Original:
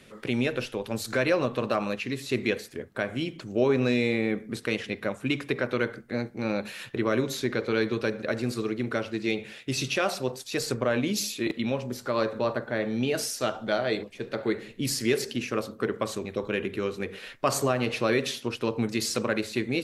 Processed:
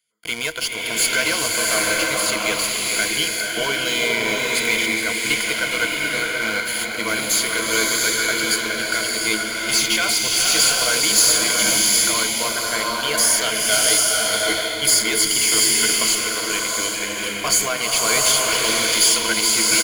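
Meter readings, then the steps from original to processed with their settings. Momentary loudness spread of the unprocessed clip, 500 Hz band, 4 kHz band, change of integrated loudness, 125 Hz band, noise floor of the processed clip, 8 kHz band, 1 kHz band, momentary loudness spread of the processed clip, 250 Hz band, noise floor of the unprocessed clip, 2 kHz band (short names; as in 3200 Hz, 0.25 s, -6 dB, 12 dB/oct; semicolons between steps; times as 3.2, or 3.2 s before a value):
7 LU, +1.0 dB, +17.5 dB, +11.5 dB, -5.0 dB, -26 dBFS, +22.0 dB, +8.5 dB, 7 LU, -1.5 dB, -49 dBFS, +13.0 dB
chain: pre-emphasis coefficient 0.97; in parallel at -12 dB: fuzz box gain 43 dB, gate -49 dBFS; on the sum: ripple EQ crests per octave 1.8, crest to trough 13 dB; on a send: echo 0.418 s -9.5 dB; on the sum: gate -38 dBFS, range -20 dB; bloom reverb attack 0.74 s, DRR -2.5 dB; gain +5 dB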